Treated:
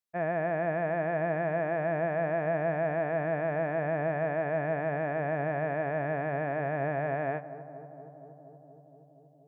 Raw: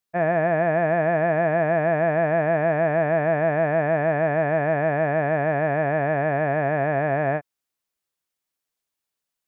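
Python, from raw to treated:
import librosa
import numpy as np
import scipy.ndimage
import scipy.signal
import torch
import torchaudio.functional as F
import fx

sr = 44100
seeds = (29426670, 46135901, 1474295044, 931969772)

y = fx.echo_filtered(x, sr, ms=236, feedback_pct=84, hz=1300.0, wet_db=-14.0)
y = y * 10.0 ** (-9.0 / 20.0)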